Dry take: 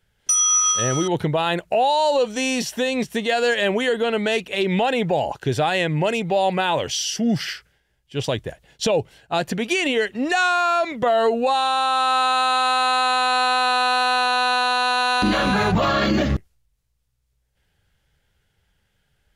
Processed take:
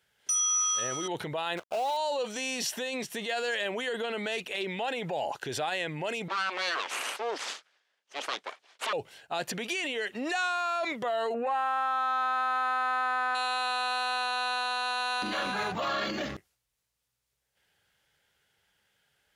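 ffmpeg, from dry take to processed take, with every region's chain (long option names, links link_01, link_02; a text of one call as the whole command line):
ffmpeg -i in.wav -filter_complex "[0:a]asettb=1/sr,asplit=3[link_01][link_02][link_03];[link_01]atrim=end=1.574[link_04];[link_02]atrim=start=1.57:end=1.97,asetpts=PTS-STARTPTS,afade=type=in:duration=0.004:curve=qsin,afade=type=out:start_time=0.396:duration=0.004:curve=qsin,acrusher=bits=5:dc=4:mix=0:aa=0.000001,lowpass=frequency=2600:poles=1,bandreject=frequency=1800:width=7.1[link_05];[link_03]atrim=start=1.966[link_06];[link_04][link_05]acrossfade=duration=0.004:curve1=hsin:curve2=qsin[link_07];[link_07][link_06]acrossfade=duration=0.004:curve1=qsin:curve2=hsin,asettb=1/sr,asplit=3[link_08][link_09][link_10];[link_08]atrim=end=6.284[link_11];[link_09]atrim=start=6.28:end=8.93,asetpts=PTS-STARTPTS,afade=type=in:duration=0.004:curve=qsin,afade=type=out:start_time=2.646:duration=0.004:curve=qsin,aeval=exprs='abs(val(0))':channel_layout=same,highpass=460,lowpass=5500[link_12];[link_10]atrim=start=8.926[link_13];[link_11][link_12]acrossfade=duration=0.004:curve1=hsin:curve2=qsin[link_14];[link_14][link_13]acrossfade=duration=0.004:curve1=qsin:curve2=hsin,asettb=1/sr,asplit=3[link_15][link_16][link_17];[link_15]atrim=end=11.344[link_18];[link_16]atrim=start=11.34:end=13.35,asetpts=PTS-STARTPTS,afade=type=in:duration=0.004:curve=qsin,afade=type=out:start_time=2.006:duration=0.004:curve=qsin,highshelf=frequency=2600:width_type=q:width=3:gain=-12,acontrast=87[link_19];[link_17]atrim=start=13.346[link_20];[link_18][link_19]acrossfade=duration=0.004:curve1=hsin:curve2=qsin[link_21];[link_21][link_20]acrossfade=duration=0.004:curve1=qsin:curve2=hsin,alimiter=limit=-21dB:level=0:latency=1:release=24,highpass=frequency=580:poles=1" out.wav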